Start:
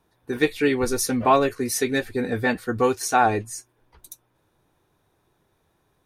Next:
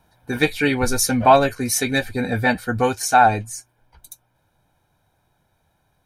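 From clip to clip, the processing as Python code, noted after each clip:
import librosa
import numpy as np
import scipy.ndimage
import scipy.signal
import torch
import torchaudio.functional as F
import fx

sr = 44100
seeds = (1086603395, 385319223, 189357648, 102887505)

y = x + 0.59 * np.pad(x, (int(1.3 * sr / 1000.0), 0))[:len(x)]
y = fx.rider(y, sr, range_db=4, speed_s=2.0)
y = y * 10.0 ** (2.5 / 20.0)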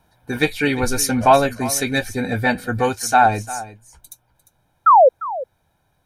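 y = fx.spec_paint(x, sr, seeds[0], shape='fall', start_s=4.86, length_s=0.23, low_hz=480.0, high_hz=1400.0, level_db=-9.0)
y = y + 10.0 ** (-16.0 / 20.0) * np.pad(y, (int(350 * sr / 1000.0), 0))[:len(y)]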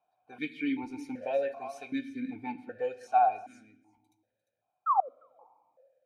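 y = fx.room_shoebox(x, sr, seeds[1], volume_m3=980.0, walls='mixed', distance_m=0.38)
y = fx.vowel_held(y, sr, hz=2.6)
y = y * 10.0 ** (-7.0 / 20.0)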